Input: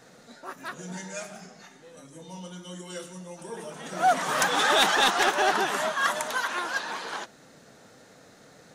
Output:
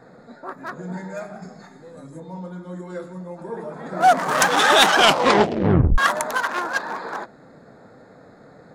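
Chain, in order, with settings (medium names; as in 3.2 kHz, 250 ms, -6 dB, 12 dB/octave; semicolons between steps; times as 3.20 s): local Wiener filter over 15 samples; 1.42–2.20 s: tone controls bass +4 dB, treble +11 dB; 4.89 s: tape stop 1.09 s; trim +7.5 dB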